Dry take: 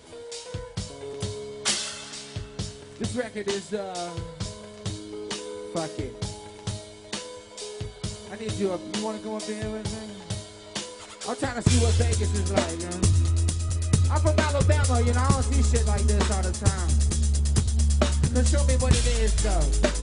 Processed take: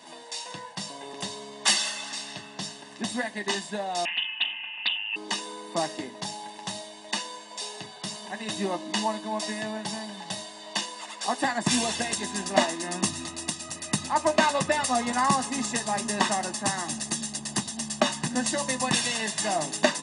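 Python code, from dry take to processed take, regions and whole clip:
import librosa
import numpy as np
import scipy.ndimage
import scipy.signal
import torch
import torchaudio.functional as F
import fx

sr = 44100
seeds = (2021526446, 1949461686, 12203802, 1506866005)

y = fx.chain(x, sr, fx.freq_invert(carrier_hz=3100),
    fx.doppler_dist(depth_ms=0.46), at=(4.05, 5.16))
y = scipy.signal.sosfilt(scipy.signal.bessel(6, 300.0, 'highpass', norm='mag', fs=sr, output='sos'), y)
y = fx.high_shelf(y, sr, hz=6400.0, db=-5.5)
y = y + 0.77 * np.pad(y, (int(1.1 * sr / 1000.0), 0))[:len(y)]
y = y * 10.0 ** (3.0 / 20.0)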